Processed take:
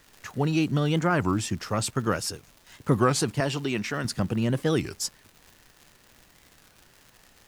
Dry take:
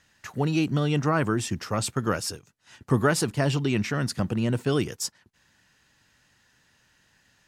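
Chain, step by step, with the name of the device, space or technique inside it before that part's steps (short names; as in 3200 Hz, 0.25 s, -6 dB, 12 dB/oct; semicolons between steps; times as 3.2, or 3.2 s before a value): 3.4–4.05 HPF 290 Hz 6 dB/oct; warped LP (record warp 33 1/3 rpm, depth 250 cents; crackle 150/s -39 dBFS; pink noise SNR 32 dB)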